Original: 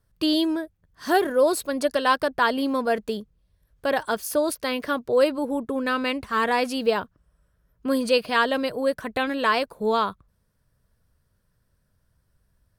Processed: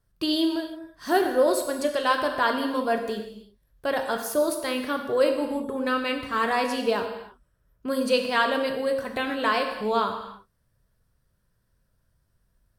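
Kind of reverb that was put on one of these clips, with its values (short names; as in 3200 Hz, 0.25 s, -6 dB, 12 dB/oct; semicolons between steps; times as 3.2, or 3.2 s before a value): non-linear reverb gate 0.36 s falling, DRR 4 dB; gain -3 dB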